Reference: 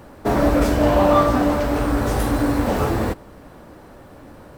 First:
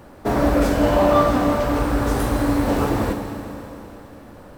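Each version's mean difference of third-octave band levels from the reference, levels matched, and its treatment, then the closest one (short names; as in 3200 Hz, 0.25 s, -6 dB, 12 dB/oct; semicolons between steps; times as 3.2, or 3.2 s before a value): 2.5 dB: Schroeder reverb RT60 3.2 s, combs from 31 ms, DRR 5 dB; gain -1.5 dB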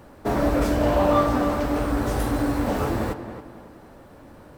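1.0 dB: tape echo 0.277 s, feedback 39%, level -9 dB, low-pass 2200 Hz; gain -4.5 dB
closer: second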